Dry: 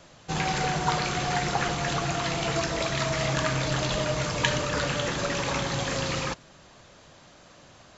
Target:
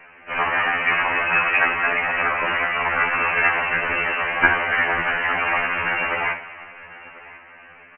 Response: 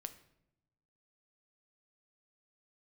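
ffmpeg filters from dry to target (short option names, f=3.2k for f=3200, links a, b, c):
-filter_complex "[0:a]highpass=1.2k,aecho=1:1:1043:0.1,asplit=2[a][b];[1:a]atrim=start_sample=2205,asetrate=22932,aresample=44100[c];[b][c]afir=irnorm=-1:irlink=0,volume=11.5dB[d];[a][d]amix=inputs=2:normalize=0,lowpass=f=2.8k:t=q:w=0.5098,lowpass=f=2.8k:t=q:w=0.6013,lowpass=f=2.8k:t=q:w=0.9,lowpass=f=2.8k:t=q:w=2.563,afreqshift=-3300,afftfilt=real='re*2*eq(mod(b,4),0)':imag='im*2*eq(mod(b,4),0)':win_size=2048:overlap=0.75,volume=3dB"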